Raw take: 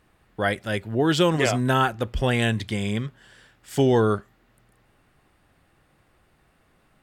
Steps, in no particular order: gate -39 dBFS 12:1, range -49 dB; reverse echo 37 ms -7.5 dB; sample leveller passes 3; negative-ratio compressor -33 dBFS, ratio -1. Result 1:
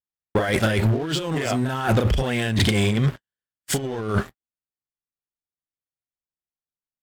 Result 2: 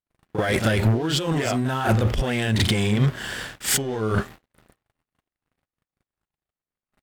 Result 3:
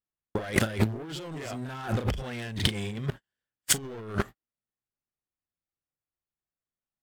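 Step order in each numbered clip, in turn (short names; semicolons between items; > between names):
gate > reverse echo > negative-ratio compressor > sample leveller; negative-ratio compressor > sample leveller > gate > reverse echo; gate > sample leveller > reverse echo > negative-ratio compressor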